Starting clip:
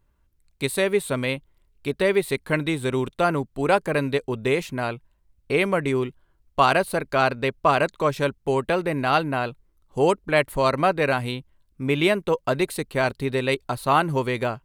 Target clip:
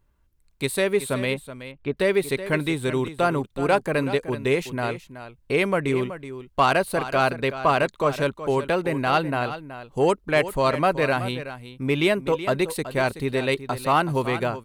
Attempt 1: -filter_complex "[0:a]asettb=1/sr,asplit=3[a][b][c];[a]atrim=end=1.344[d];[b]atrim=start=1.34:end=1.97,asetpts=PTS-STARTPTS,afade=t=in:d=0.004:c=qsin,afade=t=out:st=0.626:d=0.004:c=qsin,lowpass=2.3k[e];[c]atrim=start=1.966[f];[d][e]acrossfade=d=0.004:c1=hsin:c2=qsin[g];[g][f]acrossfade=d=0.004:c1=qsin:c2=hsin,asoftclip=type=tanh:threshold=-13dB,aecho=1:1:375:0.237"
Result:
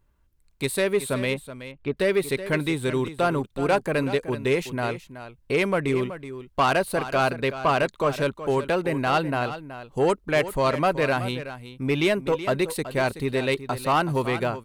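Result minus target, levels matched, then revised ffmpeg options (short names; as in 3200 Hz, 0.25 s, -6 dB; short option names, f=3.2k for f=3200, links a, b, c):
soft clip: distortion +9 dB
-filter_complex "[0:a]asettb=1/sr,asplit=3[a][b][c];[a]atrim=end=1.344[d];[b]atrim=start=1.34:end=1.97,asetpts=PTS-STARTPTS,afade=t=in:d=0.004:c=qsin,afade=t=out:st=0.626:d=0.004:c=qsin,lowpass=2.3k[e];[c]atrim=start=1.966[f];[d][e]acrossfade=d=0.004:c1=hsin:c2=qsin[g];[g][f]acrossfade=d=0.004:c1=qsin:c2=hsin,asoftclip=type=tanh:threshold=-7dB,aecho=1:1:375:0.237"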